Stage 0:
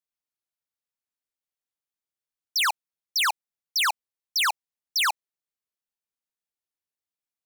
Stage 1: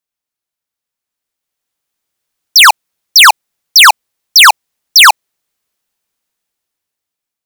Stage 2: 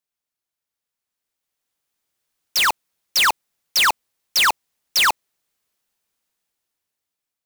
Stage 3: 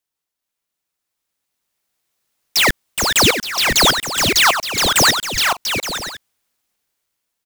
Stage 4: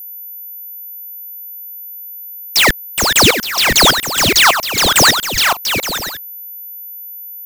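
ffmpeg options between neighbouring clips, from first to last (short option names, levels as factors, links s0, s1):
-af "dynaudnorm=f=490:g=7:m=3.98,volume=2.66"
-af "aeval=exprs='0.299*(abs(mod(val(0)/0.299+3,4)-2)-1)':c=same,volume=0.668"
-af "aecho=1:1:420|693|870.4|985.8|1061:0.631|0.398|0.251|0.158|0.1,aeval=exprs='val(0)*sin(2*PI*1500*n/s+1500*0.9/0.99*sin(2*PI*0.99*n/s))':c=same,volume=2.11"
-af "aeval=exprs='val(0)+0.0251*sin(2*PI*14000*n/s)':c=same,volume=1.5"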